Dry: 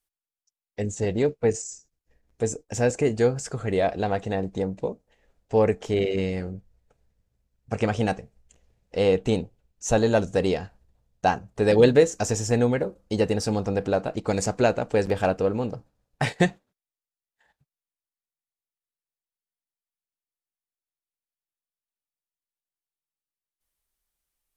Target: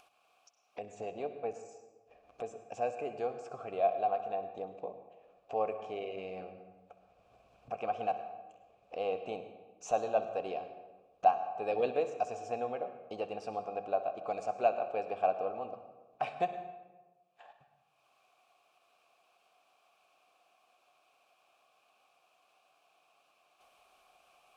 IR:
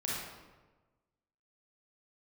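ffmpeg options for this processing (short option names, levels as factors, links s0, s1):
-filter_complex "[0:a]asplit=3[s0][s1][s2];[s0]bandpass=f=730:t=q:w=8,volume=1[s3];[s1]bandpass=f=1090:t=q:w=8,volume=0.501[s4];[s2]bandpass=f=2440:t=q:w=8,volume=0.355[s5];[s3][s4][s5]amix=inputs=3:normalize=0,acompressor=mode=upward:threshold=0.0141:ratio=2.5,asplit=2[s6][s7];[1:a]atrim=start_sample=2205,adelay=64[s8];[s7][s8]afir=irnorm=-1:irlink=0,volume=0.211[s9];[s6][s9]amix=inputs=2:normalize=0"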